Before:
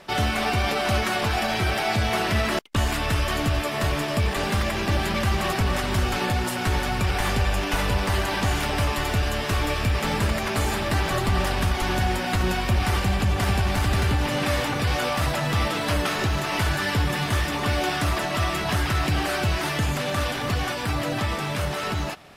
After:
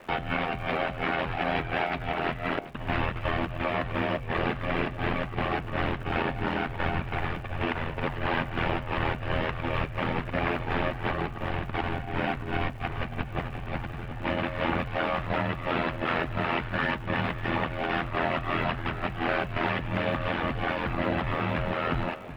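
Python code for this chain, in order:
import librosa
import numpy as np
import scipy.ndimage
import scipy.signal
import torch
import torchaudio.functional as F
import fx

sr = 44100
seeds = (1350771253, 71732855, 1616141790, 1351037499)

y = scipy.signal.sosfilt(scipy.signal.butter(4, 2800.0, 'lowpass', fs=sr, output='sos'), x)
y = fx.over_compress(y, sr, threshold_db=-26.0, ratio=-0.5)
y = fx.dmg_crackle(y, sr, seeds[0], per_s=410.0, level_db=-47.0)
y = y * np.sin(2.0 * np.pi * 42.0 * np.arange(len(y)) / sr)
y = fx.echo_alternate(y, sr, ms=371, hz=950.0, feedback_pct=58, wet_db=-13.0)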